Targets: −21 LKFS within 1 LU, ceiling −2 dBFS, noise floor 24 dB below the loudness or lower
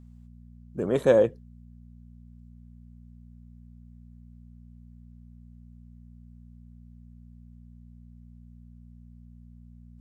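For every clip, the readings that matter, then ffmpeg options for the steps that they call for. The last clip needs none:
mains hum 60 Hz; hum harmonics up to 240 Hz; level of the hum −47 dBFS; integrated loudness −24.0 LKFS; sample peak −8.0 dBFS; target loudness −21.0 LKFS
→ -af "bandreject=frequency=60:width_type=h:width=4,bandreject=frequency=120:width_type=h:width=4,bandreject=frequency=180:width_type=h:width=4,bandreject=frequency=240:width_type=h:width=4"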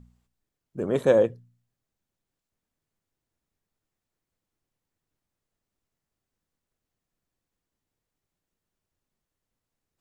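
mains hum none found; integrated loudness −23.5 LKFS; sample peak −8.0 dBFS; target loudness −21.0 LKFS
→ -af "volume=2.5dB"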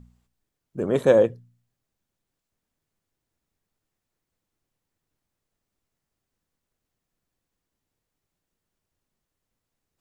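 integrated loudness −21.0 LKFS; sample peak −5.5 dBFS; background noise floor −84 dBFS

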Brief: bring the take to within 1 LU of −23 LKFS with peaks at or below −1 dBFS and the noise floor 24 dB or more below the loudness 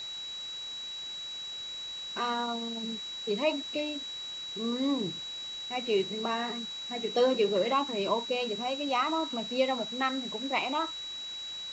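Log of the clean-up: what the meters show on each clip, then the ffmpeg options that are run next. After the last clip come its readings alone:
interfering tone 3,900 Hz; level of the tone −37 dBFS; background noise floor −40 dBFS; target noise floor −56 dBFS; integrated loudness −31.5 LKFS; sample peak −14.5 dBFS; target loudness −23.0 LKFS
→ -af "bandreject=frequency=3900:width=30"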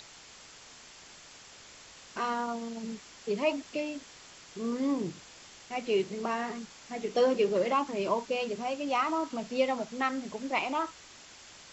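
interfering tone none found; background noise floor −52 dBFS; target noise floor −56 dBFS
→ -af "afftdn=noise_reduction=6:noise_floor=-52"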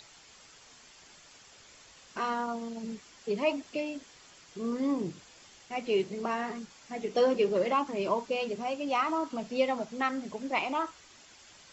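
background noise floor −56 dBFS; integrated loudness −32.0 LKFS; sample peak −15.0 dBFS; target loudness −23.0 LKFS
→ -af "volume=9dB"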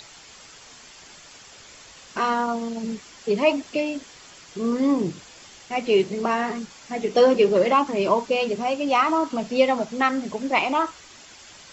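integrated loudness −23.0 LKFS; sample peak −6.0 dBFS; background noise floor −47 dBFS

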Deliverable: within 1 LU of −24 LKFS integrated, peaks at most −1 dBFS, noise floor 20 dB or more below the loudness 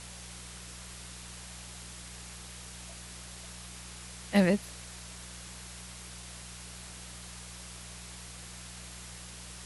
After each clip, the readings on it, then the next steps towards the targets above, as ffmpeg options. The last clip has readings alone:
mains hum 60 Hz; hum harmonics up to 180 Hz; level of the hum −47 dBFS; background noise floor −46 dBFS; target noise floor −59 dBFS; integrated loudness −38.5 LKFS; sample peak −11.0 dBFS; target loudness −24.0 LKFS
→ -af "bandreject=frequency=60:width_type=h:width=4,bandreject=frequency=120:width_type=h:width=4,bandreject=frequency=180:width_type=h:width=4"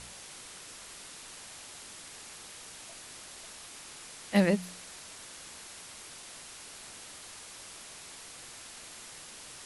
mains hum none found; background noise floor −48 dBFS; target noise floor −59 dBFS
→ -af "afftdn=noise_reduction=11:noise_floor=-48"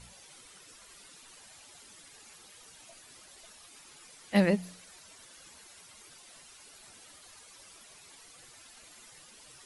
background noise floor −55 dBFS; integrated loudness −28.5 LKFS; sample peak −10.5 dBFS; target loudness −24.0 LKFS
→ -af "volume=4.5dB"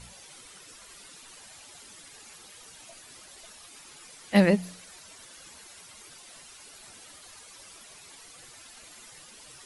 integrated loudness −24.0 LKFS; sample peak −6.0 dBFS; background noise floor −50 dBFS

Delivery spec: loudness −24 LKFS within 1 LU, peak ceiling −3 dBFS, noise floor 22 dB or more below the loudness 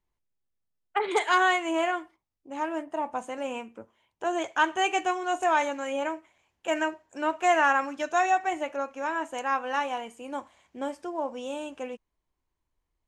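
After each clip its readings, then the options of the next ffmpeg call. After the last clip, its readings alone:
integrated loudness −28.0 LKFS; sample peak −10.5 dBFS; target loudness −24.0 LKFS
→ -af "volume=4dB"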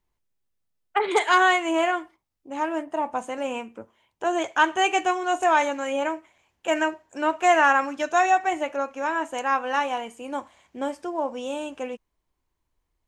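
integrated loudness −24.0 LKFS; sample peak −6.5 dBFS; background noise floor −78 dBFS

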